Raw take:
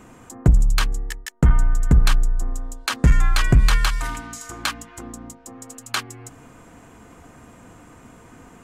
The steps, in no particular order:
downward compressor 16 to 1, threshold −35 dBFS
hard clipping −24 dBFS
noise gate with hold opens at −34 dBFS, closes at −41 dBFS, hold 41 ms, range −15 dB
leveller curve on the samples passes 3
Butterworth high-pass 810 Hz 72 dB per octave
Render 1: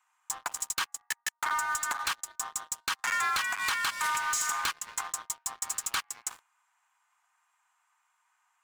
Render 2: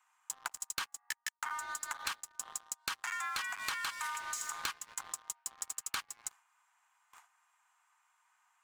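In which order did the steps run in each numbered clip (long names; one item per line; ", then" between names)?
Butterworth high-pass, then noise gate with hold, then downward compressor, then leveller curve on the samples, then hard clipping
noise gate with hold, then Butterworth high-pass, then leveller curve on the samples, then downward compressor, then hard clipping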